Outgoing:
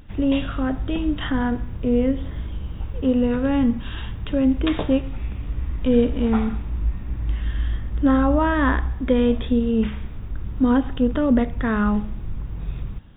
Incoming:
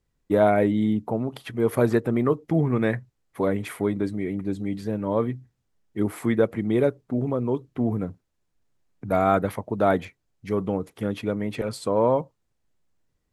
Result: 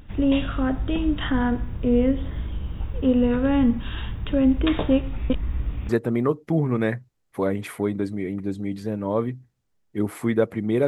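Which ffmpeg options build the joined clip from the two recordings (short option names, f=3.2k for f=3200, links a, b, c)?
-filter_complex "[0:a]apad=whole_dur=10.87,atrim=end=10.87,asplit=2[a][b];[a]atrim=end=5.302[c];[b]atrim=start=5.298:end=5.892,asetpts=PTS-STARTPTS,areverse[d];[1:a]atrim=start=1.898:end=6.88[e];[c][d]acrossfade=d=0.004:c1=hsin:c2=hsin[f];[f][e]acrossfade=d=0.004:c1=hsin:c2=hsin"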